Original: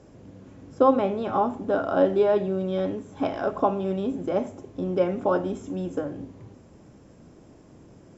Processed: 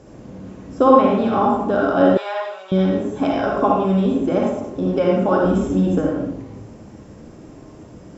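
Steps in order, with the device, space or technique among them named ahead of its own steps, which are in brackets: bathroom (reverberation RT60 0.70 s, pre-delay 48 ms, DRR -1.5 dB); dynamic bell 590 Hz, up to -4 dB, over -26 dBFS, Q 0.71; 2.17–2.72 s: high-pass 810 Hz 24 dB/octave; 5.44–6.09 s: bass shelf 160 Hz +8.5 dB; trim +6 dB

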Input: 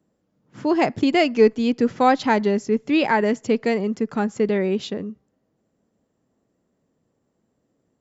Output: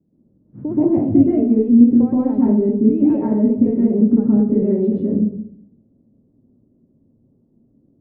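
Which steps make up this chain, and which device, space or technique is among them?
television next door (compression, threshold -23 dBFS, peak gain reduction 12.5 dB; low-pass 280 Hz 12 dB/octave; reverberation RT60 0.70 s, pre-delay 118 ms, DRR -6.5 dB); trim +6.5 dB

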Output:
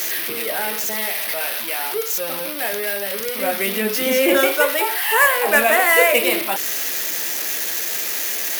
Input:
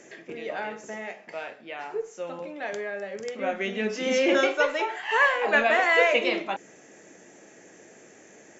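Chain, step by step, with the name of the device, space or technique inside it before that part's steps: budget class-D amplifier (dead-time distortion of 0.072 ms; zero-crossing glitches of -14.5 dBFS); trim +5.5 dB

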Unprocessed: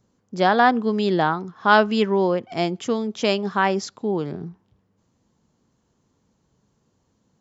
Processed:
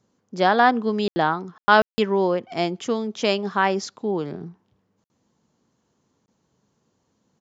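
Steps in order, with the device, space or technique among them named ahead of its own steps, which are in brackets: call with lost packets (high-pass 160 Hz 6 dB/octave; resampled via 16 kHz; lost packets of 20 ms bursts)

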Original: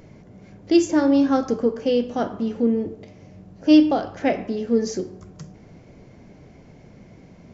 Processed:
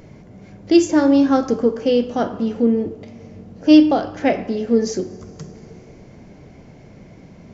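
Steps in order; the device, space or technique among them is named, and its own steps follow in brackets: compressed reverb return (on a send at -11 dB: reverberation RT60 2.6 s, pre-delay 38 ms + compression, threshold -31 dBFS, peak gain reduction 16.5 dB); on the sum: trim +3.5 dB

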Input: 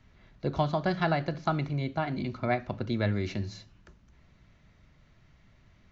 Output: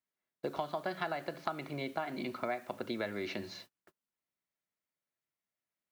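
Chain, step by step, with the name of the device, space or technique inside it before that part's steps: baby monitor (band-pass 350–4400 Hz; compression, threshold -36 dBFS, peak gain reduction 12.5 dB; white noise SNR 25 dB; gate -55 dBFS, range -33 dB); trim +3 dB

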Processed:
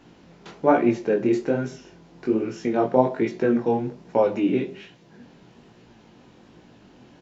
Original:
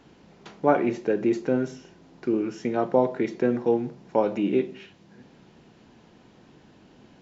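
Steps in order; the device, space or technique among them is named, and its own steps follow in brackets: double-tracked vocal (doubling 17 ms -11 dB; chorus 1.2 Hz, delay 16.5 ms, depth 7.9 ms); trim +5 dB

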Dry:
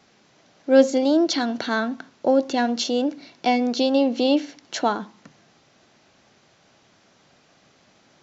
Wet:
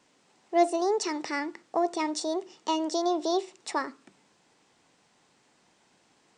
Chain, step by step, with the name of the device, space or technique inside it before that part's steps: nightcore (tape speed +29%); trim -7.5 dB

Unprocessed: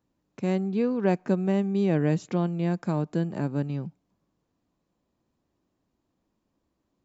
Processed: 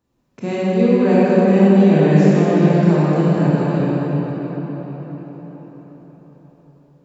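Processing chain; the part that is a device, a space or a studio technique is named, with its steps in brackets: cathedral (reverberation RT60 5.5 s, pre-delay 24 ms, DRR -9.5 dB); trim +2.5 dB

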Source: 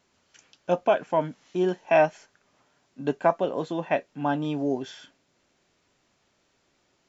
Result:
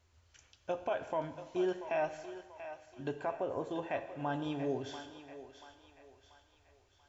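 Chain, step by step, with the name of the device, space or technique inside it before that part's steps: 3.31–3.71 s: peaking EQ 3.9 kHz -14 dB 1.1 oct; car stereo with a boomy subwoofer (resonant low shelf 120 Hz +13.5 dB, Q 3; peak limiter -19 dBFS, peak gain reduction 9.5 dB); thinning echo 686 ms, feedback 49%, high-pass 520 Hz, level -10.5 dB; gated-style reverb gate 470 ms falling, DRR 9.5 dB; trim -6.5 dB

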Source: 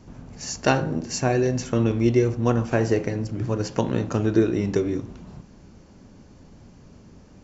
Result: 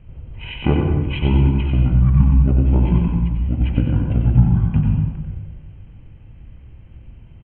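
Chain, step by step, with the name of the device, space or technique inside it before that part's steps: monster voice (pitch shift -10.5 st; formant shift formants -4 st; bass shelf 190 Hz +8.5 dB; delay 93 ms -6 dB; reverberation RT60 1.1 s, pre-delay 85 ms, DRR 4 dB); trim -1 dB

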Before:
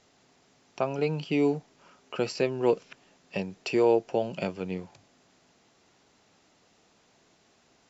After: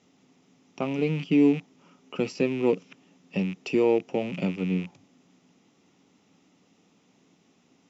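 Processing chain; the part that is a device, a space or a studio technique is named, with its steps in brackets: car door speaker with a rattle (rattle on loud lows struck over -46 dBFS, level -28 dBFS; cabinet simulation 94–6800 Hz, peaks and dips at 180 Hz +9 dB, 270 Hz +9 dB, 650 Hz -6 dB, 1 kHz -3 dB, 1.6 kHz -9 dB, 4.4 kHz -9 dB)

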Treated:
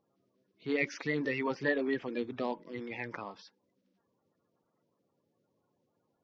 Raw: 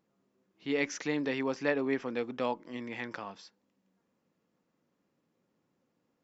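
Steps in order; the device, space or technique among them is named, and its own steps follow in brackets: clip after many re-uploads (low-pass 5.3 kHz 24 dB/octave; coarse spectral quantiser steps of 30 dB); 1.89–2.54 s: dynamic bell 1.2 kHz, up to -7 dB, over -47 dBFS, Q 1.3

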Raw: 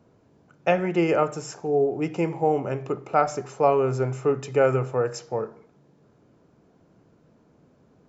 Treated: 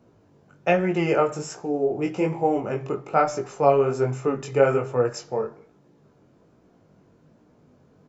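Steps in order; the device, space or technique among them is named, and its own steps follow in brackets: double-tracked vocal (doubling 20 ms -13.5 dB; chorus 1.2 Hz, delay 16.5 ms, depth 5.6 ms); trim +4 dB

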